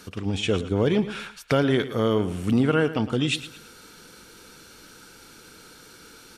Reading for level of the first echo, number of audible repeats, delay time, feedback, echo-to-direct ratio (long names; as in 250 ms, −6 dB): −14.0 dB, 3, 111 ms, 34%, −13.5 dB